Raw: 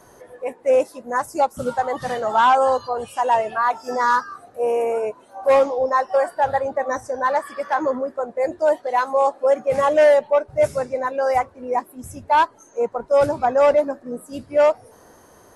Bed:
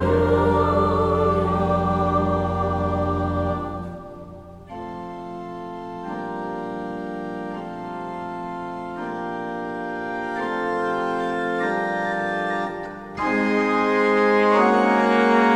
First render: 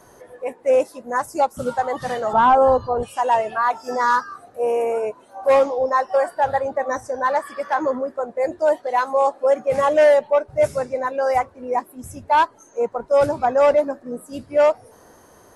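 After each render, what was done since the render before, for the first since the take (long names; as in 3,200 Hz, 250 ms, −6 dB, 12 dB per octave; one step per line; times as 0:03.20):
0:02.33–0:03.03: spectral tilt −4 dB per octave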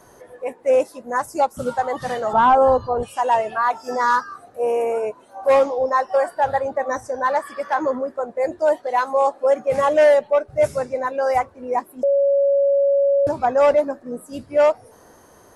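0:10.14–0:10.59: notch filter 940 Hz, Q 6.2
0:12.03–0:13.27: beep over 559 Hz −13.5 dBFS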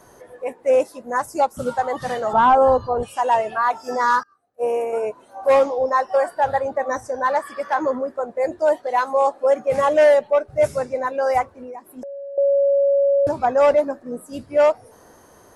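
0:04.23–0:04.93: expander for the loud parts 2.5 to 1, over −36 dBFS
0:11.52–0:12.38: downward compressor 20 to 1, threshold −31 dBFS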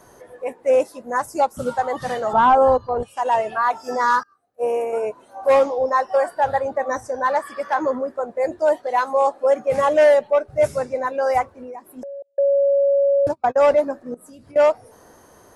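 0:02.72–0:03.37: transient designer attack −3 dB, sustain −8 dB
0:12.22–0:13.58: noise gate −22 dBFS, range −36 dB
0:14.14–0:14.56: downward compressor 16 to 1, threshold −40 dBFS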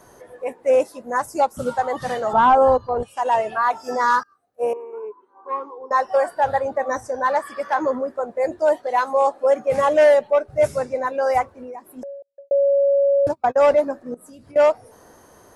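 0:04.73–0:05.91: pair of resonant band-passes 640 Hz, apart 1.4 octaves
0:12.10–0:12.51: fade out quadratic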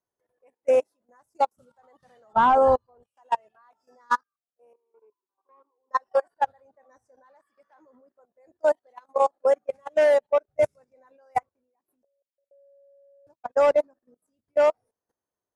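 output level in coarse steps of 16 dB
expander for the loud parts 2.5 to 1, over −34 dBFS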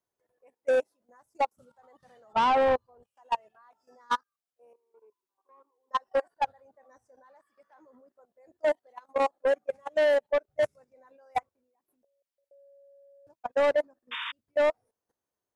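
0:14.11–0:14.32: sound drawn into the spectrogram noise 900–3,700 Hz −35 dBFS
soft clipping −19.5 dBFS, distortion −13 dB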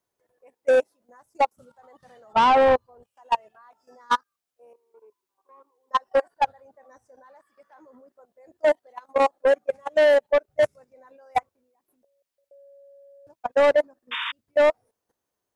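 level +6 dB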